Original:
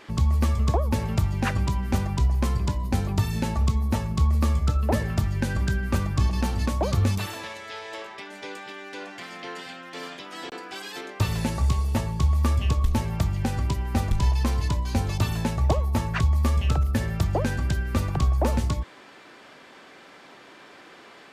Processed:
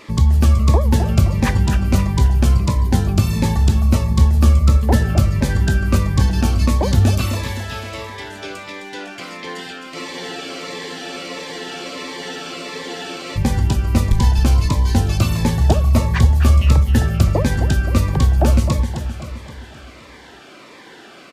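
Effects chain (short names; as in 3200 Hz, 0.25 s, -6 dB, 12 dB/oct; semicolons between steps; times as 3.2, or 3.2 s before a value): feedback echo 0.261 s, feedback 52%, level -8 dB; spectral freeze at 9.97, 3.40 s; cascading phaser falling 1.5 Hz; gain +8 dB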